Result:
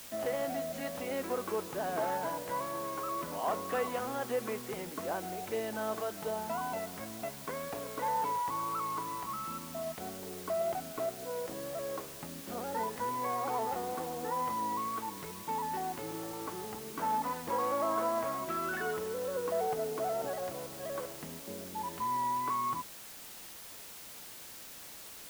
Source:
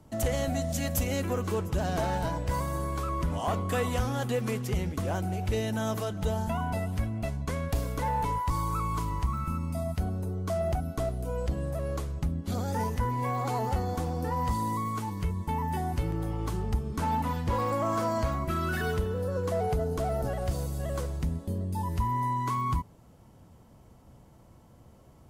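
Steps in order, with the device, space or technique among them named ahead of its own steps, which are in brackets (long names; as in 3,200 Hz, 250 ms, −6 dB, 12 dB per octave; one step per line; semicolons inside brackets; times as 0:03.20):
high-pass filter 82 Hz
wax cylinder (band-pass filter 350–2,000 Hz; tape wow and flutter 24 cents; white noise bed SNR 12 dB)
level −1.5 dB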